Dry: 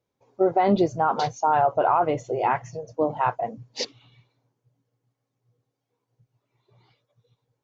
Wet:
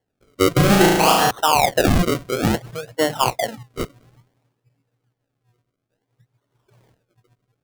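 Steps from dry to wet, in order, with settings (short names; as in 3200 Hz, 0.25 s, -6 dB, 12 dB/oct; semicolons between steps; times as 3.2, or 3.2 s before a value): decimation with a swept rate 35×, swing 100% 0.58 Hz; 0.54–1.31 flutter echo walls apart 6.2 m, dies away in 1.1 s; gain +4 dB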